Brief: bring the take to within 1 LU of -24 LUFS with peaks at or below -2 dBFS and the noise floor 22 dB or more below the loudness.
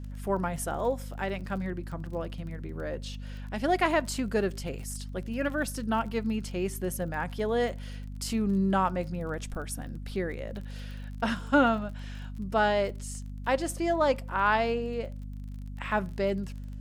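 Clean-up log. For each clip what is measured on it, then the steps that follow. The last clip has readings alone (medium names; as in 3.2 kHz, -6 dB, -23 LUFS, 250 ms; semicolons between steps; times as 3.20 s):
tick rate 31 per s; hum 50 Hz; highest harmonic 250 Hz; hum level -36 dBFS; loudness -30.5 LUFS; peak level -12.0 dBFS; loudness target -24.0 LUFS
-> de-click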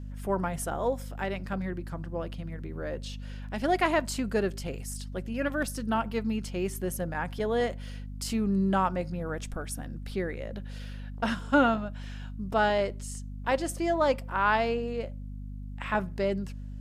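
tick rate 0.12 per s; hum 50 Hz; highest harmonic 250 Hz; hum level -37 dBFS
-> hum notches 50/100/150/200/250 Hz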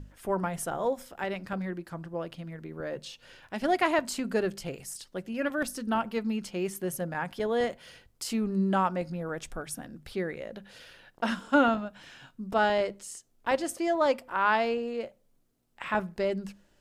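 hum not found; loudness -30.5 LUFS; peak level -11.5 dBFS; loudness target -24.0 LUFS
-> trim +6.5 dB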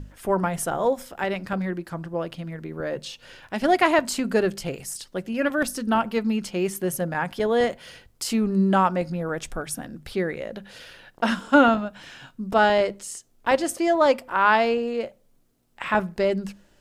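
loudness -24.0 LUFS; peak level -5.0 dBFS; noise floor -60 dBFS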